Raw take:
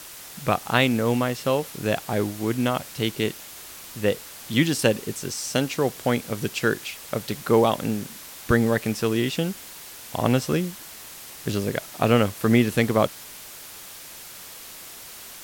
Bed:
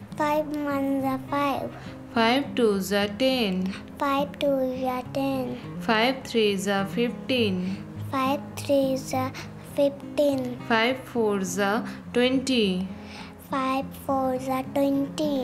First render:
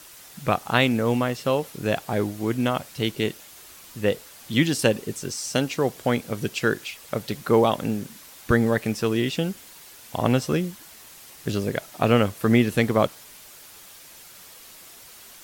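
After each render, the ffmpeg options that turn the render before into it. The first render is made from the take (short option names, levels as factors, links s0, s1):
-af "afftdn=nr=6:nf=-42"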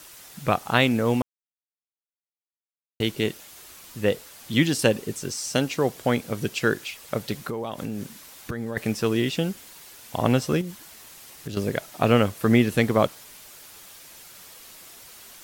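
-filter_complex "[0:a]asettb=1/sr,asplit=3[s0][s1][s2];[s0]atrim=end=7.374[s3];[s1]atrim=start=7.37:end=8.77,asetpts=PTS-STARTPTS,afade=t=in:d=0.004:c=qsin,afade=t=out:st=1.396:d=0.004:c=qsin,acompressor=threshold=0.0501:ratio=12:attack=3.2:release=140:knee=1:detection=peak[s4];[s2]atrim=start=8.766[s5];[s3][s4]acrossfade=d=0.004:c1=hsin:c2=qsin[s6];[s6][s5]acrossfade=d=0.004:c1=qsin:c2=hsin,asettb=1/sr,asplit=3[s7][s8][s9];[s7]atrim=end=10.614[s10];[s8]atrim=start=10.61:end=11.57,asetpts=PTS-STARTPTS,afade=t=in:d=0.004:c=qsin,afade=t=out:st=0.956:d=0.004:c=qsin,acompressor=threshold=0.0355:ratio=6:attack=3.2:release=140:knee=1:detection=peak[s11];[s9]atrim=start=11.566[s12];[s10][s11]acrossfade=d=0.004:c1=hsin:c2=qsin[s13];[s13][s12]acrossfade=d=0.004:c1=qsin:c2=hsin,asplit=3[s14][s15][s16];[s14]atrim=end=1.22,asetpts=PTS-STARTPTS,afade=t=out:st=1.216:d=0.004:c=hsin[s17];[s15]atrim=start=1.22:end=3,asetpts=PTS-STARTPTS,volume=0[s18];[s16]atrim=start=3,asetpts=PTS-STARTPTS,afade=t=in:d=0.004:c=hsin[s19];[s17][s18][s19]concat=n=3:v=0:a=1"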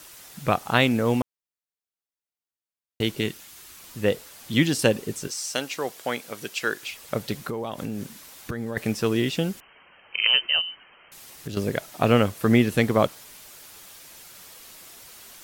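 -filter_complex "[0:a]asettb=1/sr,asplit=3[s0][s1][s2];[s0]atrim=end=3.214[s3];[s1]atrim=start=3.21:end=3.8,asetpts=PTS-STARTPTS,afade=t=in:d=0.004:c=qsin,afade=t=out:st=0.586:d=0.004:c=qsin,equalizer=f=570:t=o:w=1.1:g=-7[s4];[s2]atrim=start=3.796[s5];[s3][s4]acrossfade=d=0.004:c1=hsin:c2=qsin[s6];[s6][s5]acrossfade=d=0.004:c1=qsin:c2=hsin,asettb=1/sr,asplit=3[s7][s8][s9];[s7]atrim=end=5.274[s10];[s8]atrim=start=5.27:end=6.83,asetpts=PTS-STARTPTS,afade=t=in:d=0.004:c=qsin,afade=t=out:st=1.556:d=0.004:c=qsin,highpass=f=810:p=1[s11];[s9]atrim=start=6.826[s12];[s10][s11]acrossfade=d=0.004:c1=hsin:c2=qsin[s13];[s13][s12]acrossfade=d=0.004:c1=qsin:c2=hsin,asettb=1/sr,asplit=3[s14][s15][s16];[s14]atrim=end=9.604[s17];[s15]atrim=start=9.6:end=11.12,asetpts=PTS-STARTPTS,afade=t=in:d=0.004:c=qsin,afade=t=out:st=1.516:d=0.004:c=qsin,lowpass=f=2700:t=q:w=0.5098,lowpass=f=2700:t=q:w=0.6013,lowpass=f=2700:t=q:w=0.9,lowpass=f=2700:t=q:w=2.563,afreqshift=-3200[s18];[s16]atrim=start=11.116[s19];[s17][s18]acrossfade=d=0.004:c1=hsin:c2=qsin[s20];[s20][s19]acrossfade=d=0.004:c1=qsin:c2=hsin"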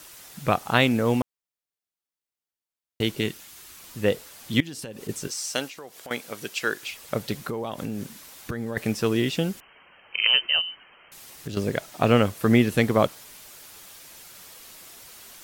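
-filter_complex "[0:a]asettb=1/sr,asplit=3[s0][s1][s2];[s0]atrim=end=4.604[s3];[s1]atrim=start=4.6:end=5.09,asetpts=PTS-STARTPTS,afade=t=in:d=0.004:c=qsin,afade=t=out:st=0.486:d=0.004:c=qsin,acompressor=threshold=0.0251:ratio=20:attack=3.2:release=140:knee=1:detection=peak[s4];[s2]atrim=start=5.086[s5];[s3][s4]acrossfade=d=0.004:c1=hsin:c2=qsin[s6];[s6][s5]acrossfade=d=0.004:c1=qsin:c2=hsin,asettb=1/sr,asplit=3[s7][s8][s9];[s7]atrim=end=5.674[s10];[s8]atrim=start=5.67:end=6.11,asetpts=PTS-STARTPTS,afade=t=in:d=0.004:c=qsin,afade=t=out:st=0.436:d=0.004:c=qsin,acompressor=threshold=0.00891:ratio=3:attack=3.2:release=140:knee=1:detection=peak[s11];[s9]atrim=start=6.106[s12];[s10][s11]acrossfade=d=0.004:c1=hsin:c2=qsin[s13];[s13][s12]acrossfade=d=0.004:c1=qsin:c2=hsin,asettb=1/sr,asplit=3[s14][s15][s16];[s14]atrim=end=11.454[s17];[s15]atrim=start=11.45:end=12.25,asetpts=PTS-STARTPTS,afade=t=in:d=0.004:c=qsin,afade=t=out:st=0.796:d=0.004:c=qsin,equalizer=f=12000:w=3.1:g=-6.5[s18];[s16]atrim=start=12.246[s19];[s17][s18]acrossfade=d=0.004:c1=hsin:c2=qsin[s20];[s20][s19]acrossfade=d=0.004:c1=qsin:c2=hsin"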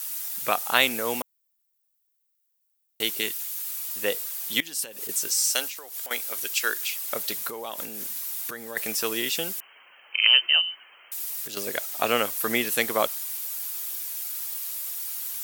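-af "highpass=f=550:p=1,aemphasis=mode=production:type=bsi"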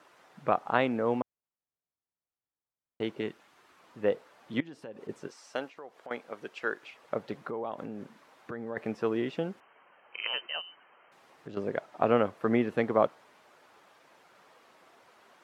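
-af "lowpass=1100,equalizer=f=93:w=0.42:g=7.5"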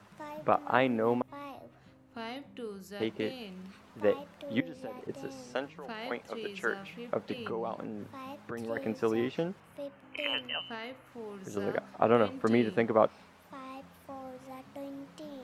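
-filter_complex "[1:a]volume=0.106[s0];[0:a][s0]amix=inputs=2:normalize=0"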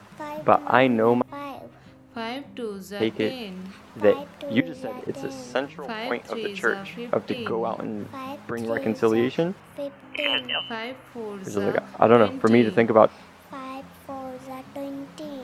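-af "volume=2.82,alimiter=limit=0.891:level=0:latency=1"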